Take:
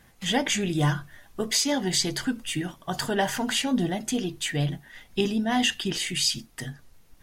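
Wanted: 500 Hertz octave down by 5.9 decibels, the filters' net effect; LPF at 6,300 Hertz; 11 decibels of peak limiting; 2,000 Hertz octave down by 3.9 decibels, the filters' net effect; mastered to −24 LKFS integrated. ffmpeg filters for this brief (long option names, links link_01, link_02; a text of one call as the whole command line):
ffmpeg -i in.wav -af "lowpass=6300,equalizer=frequency=500:width_type=o:gain=-8,equalizer=frequency=2000:width_type=o:gain=-4.5,volume=9dB,alimiter=limit=-14.5dB:level=0:latency=1" out.wav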